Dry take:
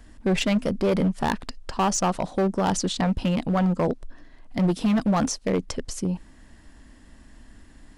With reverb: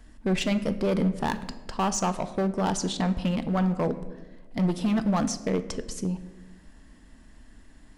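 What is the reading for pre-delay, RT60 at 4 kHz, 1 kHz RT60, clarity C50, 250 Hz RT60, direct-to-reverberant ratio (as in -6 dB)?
5 ms, 0.70 s, 0.95 s, 14.0 dB, 1.7 s, 10.0 dB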